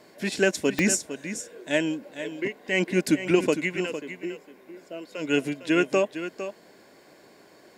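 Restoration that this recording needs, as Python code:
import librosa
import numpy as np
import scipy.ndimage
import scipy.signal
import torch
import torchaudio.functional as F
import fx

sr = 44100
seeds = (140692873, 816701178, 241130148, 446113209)

y = fx.fix_declick_ar(x, sr, threshold=10.0)
y = fx.fix_echo_inverse(y, sr, delay_ms=456, level_db=-11.0)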